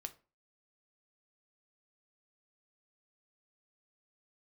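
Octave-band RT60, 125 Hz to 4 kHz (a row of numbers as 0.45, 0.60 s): 0.40, 0.40, 0.35, 0.35, 0.30, 0.25 s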